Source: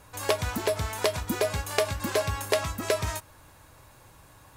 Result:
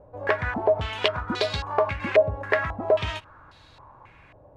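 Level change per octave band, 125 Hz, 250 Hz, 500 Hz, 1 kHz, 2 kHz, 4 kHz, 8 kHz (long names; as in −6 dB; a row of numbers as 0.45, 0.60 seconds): 0.0 dB, +0.5 dB, +5.0 dB, +4.0 dB, +5.5 dB, +2.0 dB, below −15 dB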